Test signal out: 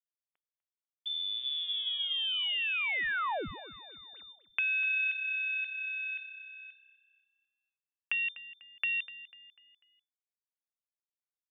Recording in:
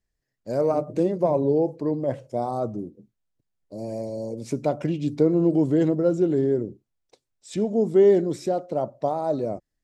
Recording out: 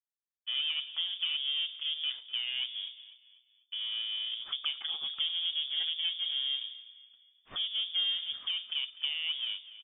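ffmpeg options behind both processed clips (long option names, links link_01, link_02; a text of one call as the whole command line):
ffmpeg -i in.wav -filter_complex "[0:a]aeval=exprs='if(lt(val(0),0),0.447*val(0),val(0))':channel_layout=same,agate=range=-33dB:threshold=-45dB:ratio=3:detection=peak,lowshelf=frequency=250:gain=-10.5,acompressor=threshold=-42dB:ratio=3,bandreject=frequency=60:width_type=h:width=6,bandreject=frequency=120:width_type=h:width=6,bandreject=frequency=180:width_type=h:width=6,bandreject=frequency=240:width_type=h:width=6,bandreject=frequency=300:width_type=h:width=6,bandreject=frequency=360:width_type=h:width=6,asplit=2[link_01][link_02];[link_02]asplit=4[link_03][link_04][link_05][link_06];[link_03]adelay=247,afreqshift=-32,volume=-16dB[link_07];[link_04]adelay=494,afreqshift=-64,volume=-23.7dB[link_08];[link_05]adelay=741,afreqshift=-96,volume=-31.5dB[link_09];[link_06]adelay=988,afreqshift=-128,volume=-39.2dB[link_10];[link_07][link_08][link_09][link_10]amix=inputs=4:normalize=0[link_11];[link_01][link_11]amix=inputs=2:normalize=0,lowpass=frequency=3100:width_type=q:width=0.5098,lowpass=frequency=3100:width_type=q:width=0.6013,lowpass=frequency=3100:width_type=q:width=0.9,lowpass=frequency=3100:width_type=q:width=2.563,afreqshift=-3600,volume=7dB" out.wav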